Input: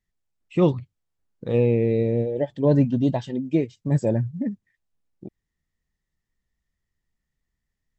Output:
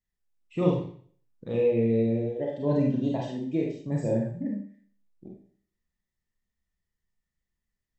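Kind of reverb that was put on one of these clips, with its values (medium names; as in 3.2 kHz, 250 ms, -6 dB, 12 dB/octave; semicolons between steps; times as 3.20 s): Schroeder reverb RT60 0.51 s, combs from 31 ms, DRR -2 dB; trim -8.5 dB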